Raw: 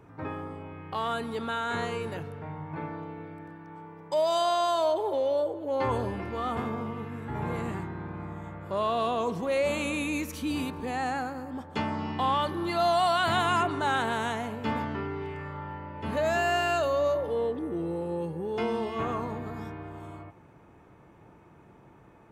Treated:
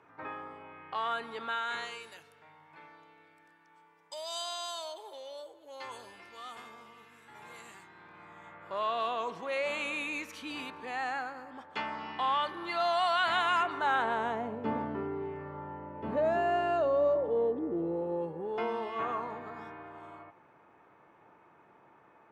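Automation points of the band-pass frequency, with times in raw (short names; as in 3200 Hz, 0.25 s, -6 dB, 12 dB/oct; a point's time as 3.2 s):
band-pass, Q 0.67
1.45 s 1700 Hz
2.17 s 6700 Hz
7.8 s 6700 Hz
8.7 s 1900 Hz
13.63 s 1900 Hz
14.48 s 450 Hz
17.83 s 450 Hz
18.86 s 1300 Hz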